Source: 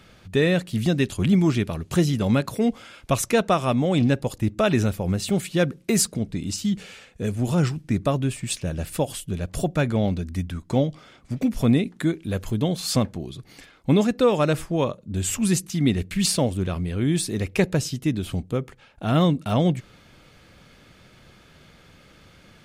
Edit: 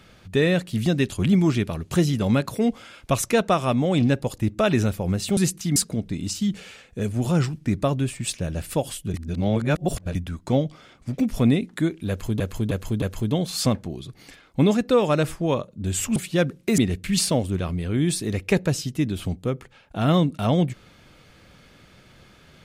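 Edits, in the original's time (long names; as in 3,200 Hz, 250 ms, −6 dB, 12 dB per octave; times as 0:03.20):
0:05.37–0:05.99: swap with 0:15.46–0:15.85
0:09.37–0:10.38: reverse
0:12.32–0:12.63: repeat, 4 plays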